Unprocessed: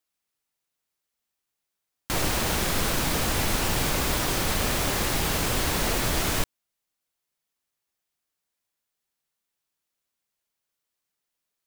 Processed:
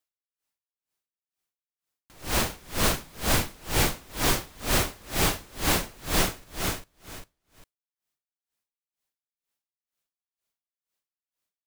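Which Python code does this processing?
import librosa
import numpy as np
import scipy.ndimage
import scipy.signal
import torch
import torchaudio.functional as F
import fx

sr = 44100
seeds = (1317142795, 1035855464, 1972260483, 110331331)

y = fx.leveller(x, sr, passes=1)
y = fx.echo_feedback(y, sr, ms=400, feedback_pct=22, wet_db=-4)
y = y * 10.0 ** (-31 * (0.5 - 0.5 * np.cos(2.0 * np.pi * 2.1 * np.arange(len(y)) / sr)) / 20.0)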